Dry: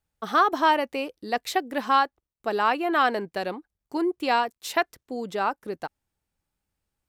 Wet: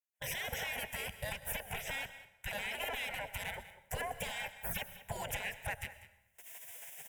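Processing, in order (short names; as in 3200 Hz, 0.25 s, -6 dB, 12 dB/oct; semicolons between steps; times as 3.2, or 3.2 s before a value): recorder AGC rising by 40 dB/s; spectral gate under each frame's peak -25 dB weak; gate with hold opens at -53 dBFS; low shelf 480 Hz +9.5 dB; in parallel at -0.5 dB: compressor, threshold -48 dBFS, peak gain reduction 14.5 dB; on the sum: limiter -29.5 dBFS, peak gain reduction 10 dB; one-sided clip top -39 dBFS; fixed phaser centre 1200 Hz, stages 6; echo 0.196 s -16.5 dB; plate-style reverb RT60 0.99 s, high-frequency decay 0.8×, pre-delay 90 ms, DRR 15 dB; gain +7 dB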